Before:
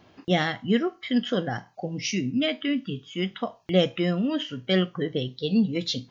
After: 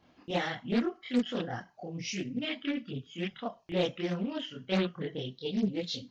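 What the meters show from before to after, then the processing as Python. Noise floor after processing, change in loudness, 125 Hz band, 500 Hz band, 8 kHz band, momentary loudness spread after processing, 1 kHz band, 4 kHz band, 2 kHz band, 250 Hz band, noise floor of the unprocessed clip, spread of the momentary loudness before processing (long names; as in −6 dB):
−64 dBFS, −7.5 dB, −8.5 dB, −7.5 dB, can't be measured, 8 LU, −6.0 dB, −8.0 dB, −7.0 dB, −7.5 dB, −58 dBFS, 7 LU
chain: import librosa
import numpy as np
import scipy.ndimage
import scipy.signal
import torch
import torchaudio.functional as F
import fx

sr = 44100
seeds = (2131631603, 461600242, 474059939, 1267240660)

y = fx.chorus_voices(x, sr, voices=4, hz=1.3, base_ms=27, depth_ms=3.0, mix_pct=60)
y = fx.doppler_dist(y, sr, depth_ms=0.52)
y = F.gain(torch.from_numpy(y), -4.5).numpy()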